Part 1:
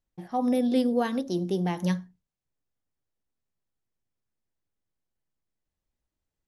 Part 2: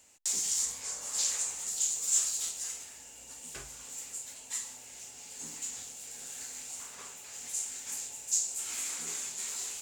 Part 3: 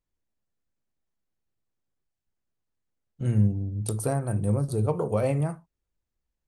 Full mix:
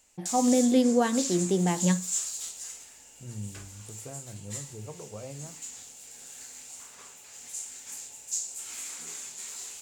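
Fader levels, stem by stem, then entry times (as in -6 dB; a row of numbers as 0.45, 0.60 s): +2.0, -2.5, -16.5 dB; 0.00, 0.00, 0.00 s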